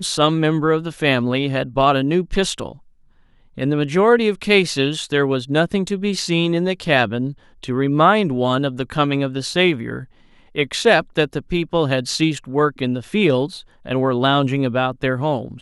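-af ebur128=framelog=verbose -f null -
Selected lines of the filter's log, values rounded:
Integrated loudness:
  I:         -18.7 LUFS
  Threshold: -29.1 LUFS
Loudness range:
  LRA:         1.9 LU
  Threshold: -39.2 LUFS
  LRA low:   -19.9 LUFS
  LRA high:  -18.1 LUFS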